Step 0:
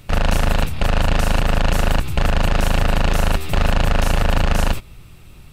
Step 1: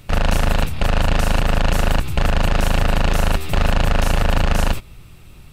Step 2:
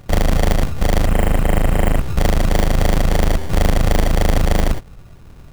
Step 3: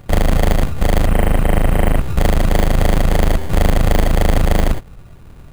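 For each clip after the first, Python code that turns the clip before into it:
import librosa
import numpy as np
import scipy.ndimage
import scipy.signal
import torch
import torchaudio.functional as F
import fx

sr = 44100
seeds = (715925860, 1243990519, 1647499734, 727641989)

y1 = x
y2 = fx.sample_hold(y1, sr, seeds[0], rate_hz=1300.0, jitter_pct=0)
y2 = fx.spec_repair(y2, sr, seeds[1], start_s=1.08, length_s=0.95, low_hz=3200.0, high_hz=7100.0, source='after')
y2 = y2 * 10.0 ** (1.5 / 20.0)
y3 = np.repeat(scipy.signal.resample_poly(y2, 1, 4), 4)[:len(y2)]
y3 = y3 * 10.0 ** (1.5 / 20.0)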